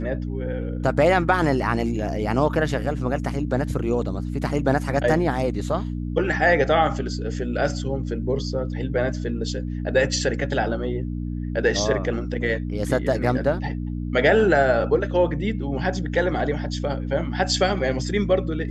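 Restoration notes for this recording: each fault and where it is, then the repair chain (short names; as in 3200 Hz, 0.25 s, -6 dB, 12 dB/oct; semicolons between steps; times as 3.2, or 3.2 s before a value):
hum 60 Hz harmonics 5 -28 dBFS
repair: de-hum 60 Hz, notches 5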